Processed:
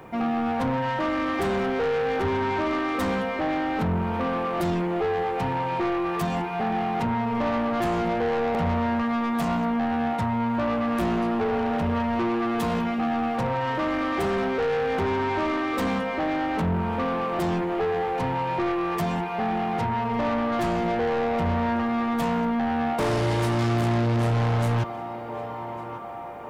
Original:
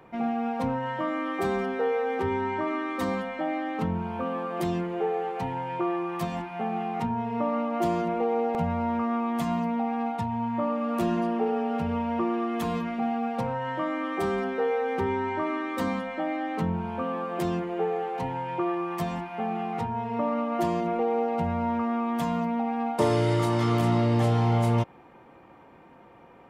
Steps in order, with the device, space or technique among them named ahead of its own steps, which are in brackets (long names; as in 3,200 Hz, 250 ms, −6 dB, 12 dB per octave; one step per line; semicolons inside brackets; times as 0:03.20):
feedback echo with a band-pass in the loop 1,149 ms, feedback 77%, band-pass 970 Hz, level −15 dB
open-reel tape (soft clipping −30 dBFS, distortion −8 dB; parametric band 73 Hz +4.5 dB 1.14 octaves; white noise bed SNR 47 dB)
level +8 dB